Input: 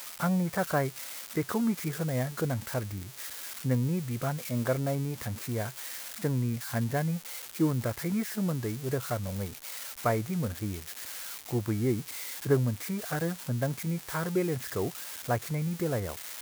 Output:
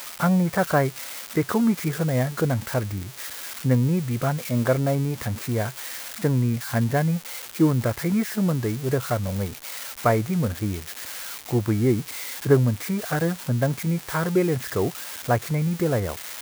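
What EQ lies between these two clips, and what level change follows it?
bell 14000 Hz -3.5 dB 2.1 oct; +7.5 dB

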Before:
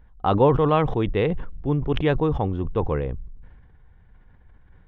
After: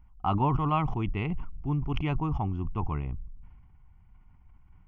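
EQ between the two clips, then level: fixed phaser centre 2500 Hz, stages 8; -3.5 dB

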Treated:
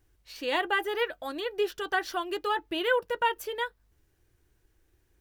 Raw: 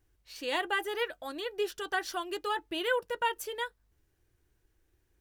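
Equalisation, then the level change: dynamic EQ 8400 Hz, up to -8 dB, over -55 dBFS, Q 0.71; +4.0 dB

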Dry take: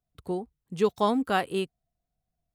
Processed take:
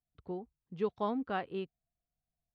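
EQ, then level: air absorption 250 m; high shelf 6500 Hz -3.5 dB; -8.5 dB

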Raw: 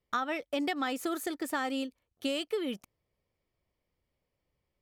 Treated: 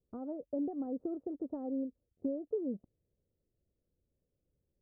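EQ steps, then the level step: inverse Chebyshev low-pass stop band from 2300 Hz, stop band 70 dB; dynamic EQ 350 Hz, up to -5 dB, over -44 dBFS, Q 2.3; +1.0 dB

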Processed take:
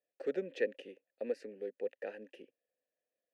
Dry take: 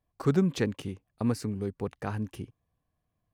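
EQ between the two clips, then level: vowel filter e; HPF 230 Hz 24 dB/oct; bell 1100 Hz -2.5 dB 0.77 oct; +5.5 dB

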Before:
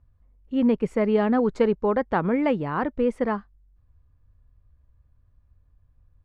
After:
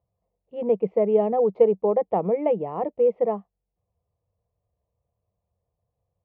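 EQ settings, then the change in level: dynamic EQ 280 Hz, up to +7 dB, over -34 dBFS, Q 1.1; speaker cabinet 170–2600 Hz, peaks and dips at 190 Hz +9 dB, 300 Hz +7 dB, 470 Hz +7 dB, 700 Hz +8 dB; fixed phaser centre 640 Hz, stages 4; -4.0 dB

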